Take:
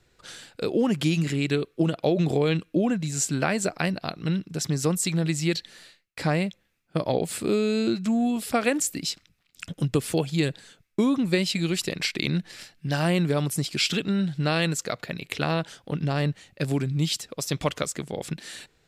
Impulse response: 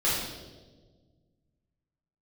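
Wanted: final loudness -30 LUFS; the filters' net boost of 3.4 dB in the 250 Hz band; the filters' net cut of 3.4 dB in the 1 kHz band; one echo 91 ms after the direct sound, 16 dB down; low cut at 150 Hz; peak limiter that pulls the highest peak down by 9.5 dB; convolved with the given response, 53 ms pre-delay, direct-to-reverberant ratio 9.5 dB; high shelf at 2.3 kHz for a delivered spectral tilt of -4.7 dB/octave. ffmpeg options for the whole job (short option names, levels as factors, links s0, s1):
-filter_complex "[0:a]highpass=150,equalizer=f=250:t=o:g=6,equalizer=f=1000:t=o:g=-6.5,highshelf=f=2300:g=3.5,alimiter=limit=0.158:level=0:latency=1,aecho=1:1:91:0.158,asplit=2[s0][s1];[1:a]atrim=start_sample=2205,adelay=53[s2];[s1][s2]afir=irnorm=-1:irlink=0,volume=0.0841[s3];[s0][s3]amix=inputs=2:normalize=0,volume=0.631"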